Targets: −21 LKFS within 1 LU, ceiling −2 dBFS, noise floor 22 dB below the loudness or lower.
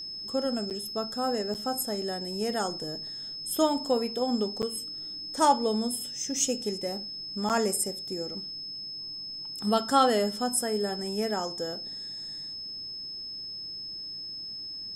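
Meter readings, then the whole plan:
number of dropouts 4; longest dropout 8.1 ms; interfering tone 5,200 Hz; level of the tone −36 dBFS; integrated loudness −30.0 LKFS; sample peak −9.0 dBFS; target loudness −21.0 LKFS
→ repair the gap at 0:00.70/0:01.54/0:04.62/0:07.49, 8.1 ms
notch filter 5,200 Hz, Q 30
level +9 dB
brickwall limiter −2 dBFS

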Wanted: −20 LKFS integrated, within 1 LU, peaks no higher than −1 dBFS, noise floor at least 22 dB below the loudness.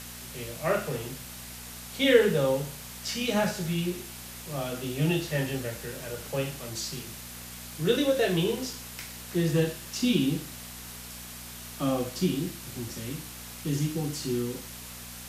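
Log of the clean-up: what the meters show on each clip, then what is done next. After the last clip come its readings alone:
mains hum 60 Hz; hum harmonics up to 240 Hz; level of the hum −46 dBFS; background noise floor −43 dBFS; target noise floor −52 dBFS; integrated loudness −29.5 LKFS; sample peak −7.5 dBFS; target loudness −20.0 LKFS
→ hum removal 60 Hz, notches 4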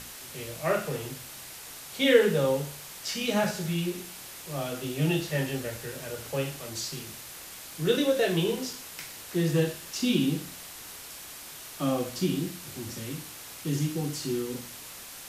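mains hum none found; background noise floor −44 dBFS; target noise floor −52 dBFS
→ noise reduction from a noise print 8 dB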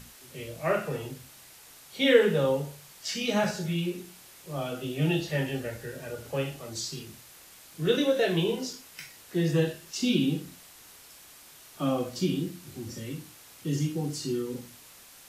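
background noise floor −52 dBFS; integrated loudness −29.0 LKFS; sample peak −7.5 dBFS; target loudness −20.0 LKFS
→ level +9 dB
brickwall limiter −1 dBFS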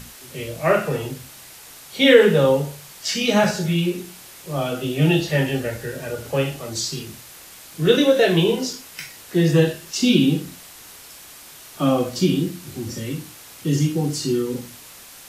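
integrated loudness −20.5 LKFS; sample peak −1.0 dBFS; background noise floor −43 dBFS

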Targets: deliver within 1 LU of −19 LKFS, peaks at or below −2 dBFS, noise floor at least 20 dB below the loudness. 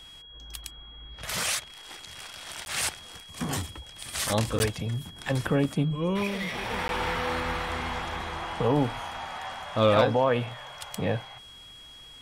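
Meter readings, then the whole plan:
number of dropouts 3; longest dropout 11 ms; interfering tone 3,300 Hz; level of the tone −46 dBFS; integrated loudness −28.5 LKFS; sample peak −12.5 dBFS; target loudness −19.0 LKFS
→ repair the gap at 0:02.65/0:04.59/0:06.88, 11 ms
notch filter 3,300 Hz, Q 30
level +9.5 dB

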